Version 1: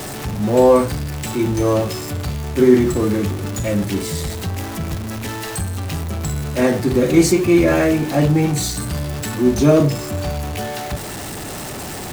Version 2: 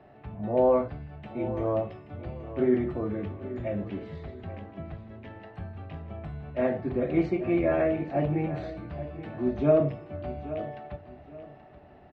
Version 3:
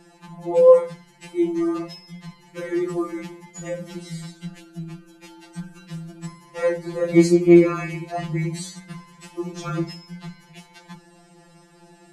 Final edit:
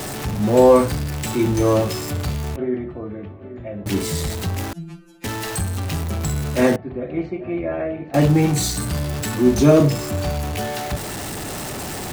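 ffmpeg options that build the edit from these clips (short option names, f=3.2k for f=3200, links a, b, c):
-filter_complex "[1:a]asplit=2[a][b];[0:a]asplit=4[c][d][e][f];[c]atrim=end=2.562[g];[a]atrim=start=2.558:end=3.862[h];[d]atrim=start=3.858:end=4.732[i];[2:a]atrim=start=4.728:end=5.242[j];[e]atrim=start=5.238:end=6.762[k];[b]atrim=start=6.758:end=8.142[l];[f]atrim=start=8.138[m];[g][h]acrossfade=d=0.004:c1=hsin:c2=hsin[n];[n][i]acrossfade=d=0.004:c1=hsin:c2=hsin[o];[o][j]acrossfade=d=0.004:c1=hsin:c2=hsin[p];[p][k]acrossfade=d=0.004:c1=hsin:c2=hsin[q];[q][l]acrossfade=d=0.004:c1=hsin:c2=hsin[r];[r][m]acrossfade=d=0.004:c1=hsin:c2=hsin"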